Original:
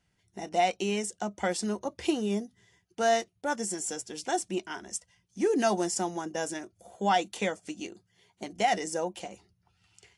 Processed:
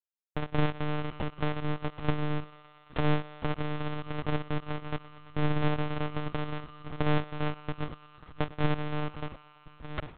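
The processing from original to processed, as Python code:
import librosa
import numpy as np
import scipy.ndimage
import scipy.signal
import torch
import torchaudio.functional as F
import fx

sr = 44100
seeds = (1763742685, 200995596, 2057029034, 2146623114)

y = np.r_[np.sort(x[:len(x) // 256 * 256].reshape(-1, 256), axis=1).ravel(), x[len(x) // 256 * 256:]]
y = fx.recorder_agc(y, sr, target_db=-21.0, rise_db_per_s=40.0, max_gain_db=30)
y = fx.lowpass(y, sr, hz=2900.0, slope=6)
y = fx.high_shelf(y, sr, hz=2000.0, db=3.0)
y = fx.backlash(y, sr, play_db=-30.5)
y = fx.echo_thinned(y, sr, ms=112, feedback_pct=84, hz=300.0, wet_db=-19.0)
y = fx.lpc_monotone(y, sr, seeds[0], pitch_hz=150.0, order=10)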